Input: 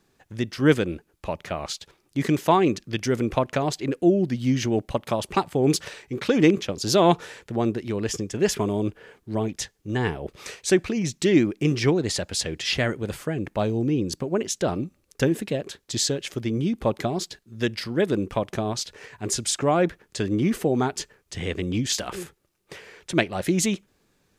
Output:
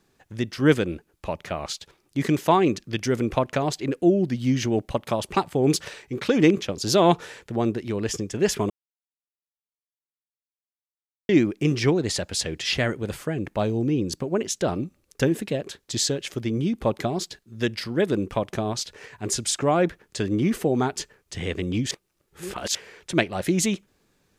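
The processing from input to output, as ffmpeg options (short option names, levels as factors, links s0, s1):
-filter_complex "[0:a]asplit=5[s0][s1][s2][s3][s4];[s0]atrim=end=8.7,asetpts=PTS-STARTPTS,afade=t=out:st=8.696:d=0.004:c=hsin[s5];[s1]atrim=start=8.7:end=11.29,asetpts=PTS-STARTPTS,volume=0[s6];[s2]atrim=start=11.29:end=21.912,asetpts=PTS-STARTPTS,afade=t=in:d=0.004:c=hsin[s7];[s3]atrim=start=21.908:end=22.752,asetpts=PTS-STARTPTS,areverse[s8];[s4]atrim=start=22.748[s9];[s5][s6][s7]concat=n=3:v=0:a=1[s10];[s10][s8]acrossfade=d=0.004:c1=hsin:c2=hsin[s11];[s11][s9]acrossfade=d=0.004:c1=hsin:c2=hsin"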